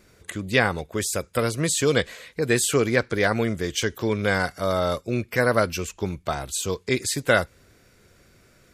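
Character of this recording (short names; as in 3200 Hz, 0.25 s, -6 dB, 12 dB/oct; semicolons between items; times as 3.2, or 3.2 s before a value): noise floor -58 dBFS; spectral tilt -4.0 dB/oct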